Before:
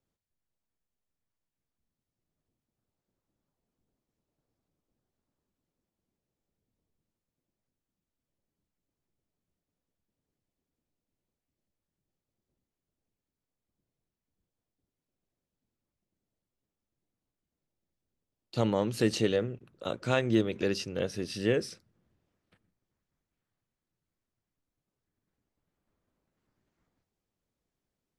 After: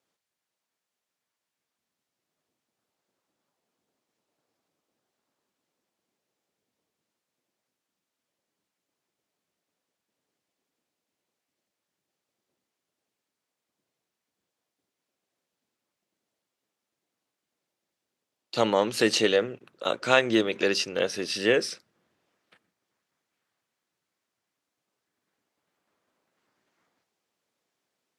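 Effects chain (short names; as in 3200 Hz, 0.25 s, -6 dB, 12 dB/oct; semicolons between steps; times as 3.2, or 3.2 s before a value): weighting filter A; gain +9 dB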